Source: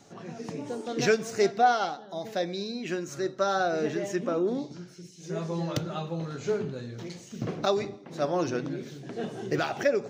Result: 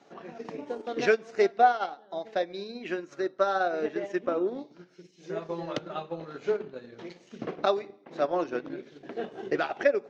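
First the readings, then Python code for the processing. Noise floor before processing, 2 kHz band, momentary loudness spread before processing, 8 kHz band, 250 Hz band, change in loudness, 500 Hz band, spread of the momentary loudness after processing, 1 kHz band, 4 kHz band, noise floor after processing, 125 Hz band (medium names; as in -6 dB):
-49 dBFS, +0.5 dB, 13 LU, under -10 dB, -4.0 dB, 0.0 dB, 0.0 dB, 16 LU, +0.5 dB, -4.5 dB, -59 dBFS, -12.0 dB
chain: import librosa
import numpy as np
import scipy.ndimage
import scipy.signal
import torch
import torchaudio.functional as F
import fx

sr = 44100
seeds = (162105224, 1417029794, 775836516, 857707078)

y = scipy.signal.sosfilt(scipy.signal.butter(2, 300.0, 'highpass', fs=sr, output='sos'), x)
y = fx.transient(y, sr, attack_db=3, sustain_db=-8)
y = scipy.signal.sosfilt(scipy.signal.butter(2, 3200.0, 'lowpass', fs=sr, output='sos'), y)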